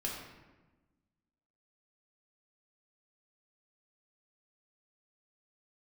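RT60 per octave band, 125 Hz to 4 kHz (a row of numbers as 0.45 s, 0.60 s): 1.6 s, 1.7 s, 1.2 s, 1.1 s, 1.0 s, 0.75 s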